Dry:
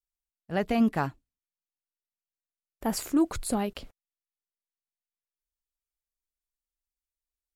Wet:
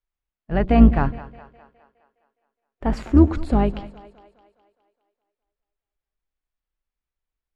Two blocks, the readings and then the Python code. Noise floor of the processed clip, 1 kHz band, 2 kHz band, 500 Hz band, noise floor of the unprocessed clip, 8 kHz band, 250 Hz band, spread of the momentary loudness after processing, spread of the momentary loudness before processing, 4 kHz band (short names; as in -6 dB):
under -85 dBFS, +6.5 dB, +4.0 dB, +7.5 dB, under -85 dBFS, under -15 dB, +9.0 dB, 14 LU, 10 LU, n/a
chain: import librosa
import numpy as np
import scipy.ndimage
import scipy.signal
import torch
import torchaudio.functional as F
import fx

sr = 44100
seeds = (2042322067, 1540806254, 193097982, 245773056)

y = fx.octave_divider(x, sr, octaves=2, level_db=1.0)
y = scipy.signal.sosfilt(scipy.signal.butter(2, 2500.0, 'lowpass', fs=sr, output='sos'), y)
y = fx.hpss(y, sr, part='harmonic', gain_db=6)
y = fx.echo_split(y, sr, split_hz=410.0, low_ms=103, high_ms=207, feedback_pct=52, wet_db=-16.0)
y = F.gain(torch.from_numpy(y), 3.5).numpy()